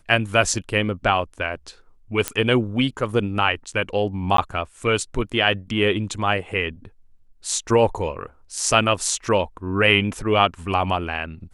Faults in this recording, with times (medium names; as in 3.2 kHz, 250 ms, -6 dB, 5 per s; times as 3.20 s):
2.28 s: pop -5 dBFS
4.37–4.38 s: dropout 13 ms